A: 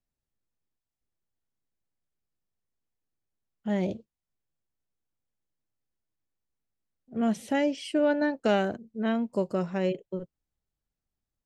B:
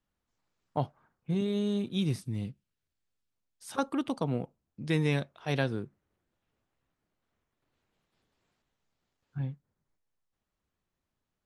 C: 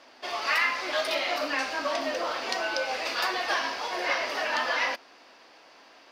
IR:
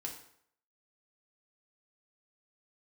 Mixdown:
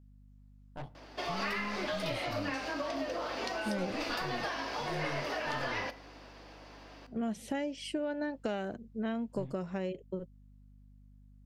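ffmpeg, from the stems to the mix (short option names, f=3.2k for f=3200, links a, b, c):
-filter_complex "[0:a]volume=-2dB[a];[1:a]flanger=delay=20:depth=4.5:speed=2.1,aeval=exprs='(tanh(70.8*val(0)+0.5)-tanh(0.5))/70.8':c=same,volume=-3dB,asplit=2[b][c];[c]volume=-13.5dB[d];[2:a]lowshelf=f=440:g=12,acompressor=threshold=-31dB:ratio=5,adelay=950,volume=-4.5dB,asplit=2[e][f];[f]volume=-7dB[g];[a][e]amix=inputs=2:normalize=0,aeval=exprs='val(0)+0.00158*(sin(2*PI*50*n/s)+sin(2*PI*2*50*n/s)/2+sin(2*PI*3*50*n/s)/3+sin(2*PI*4*50*n/s)/4+sin(2*PI*5*50*n/s)/5)':c=same,acompressor=threshold=-32dB:ratio=6,volume=0dB[h];[3:a]atrim=start_sample=2205[i];[d][g]amix=inputs=2:normalize=0[j];[j][i]afir=irnorm=-1:irlink=0[k];[b][h][k]amix=inputs=3:normalize=0"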